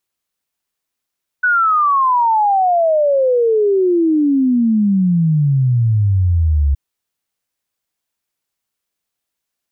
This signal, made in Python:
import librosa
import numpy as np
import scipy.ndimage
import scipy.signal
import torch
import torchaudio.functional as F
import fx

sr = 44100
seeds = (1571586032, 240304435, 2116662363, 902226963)

y = fx.ess(sr, length_s=5.32, from_hz=1500.0, to_hz=68.0, level_db=-10.5)